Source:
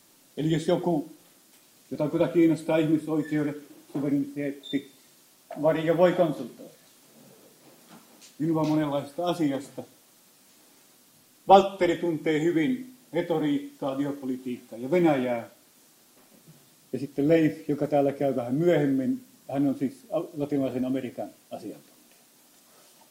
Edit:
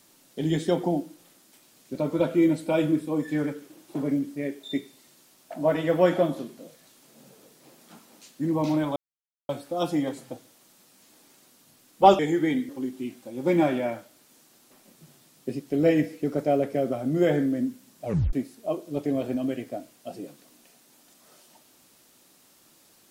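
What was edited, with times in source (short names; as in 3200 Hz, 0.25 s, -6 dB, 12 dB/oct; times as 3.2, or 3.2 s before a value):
8.96 insert silence 0.53 s
11.66–12.32 cut
12.82–14.15 cut
19.51 tape stop 0.28 s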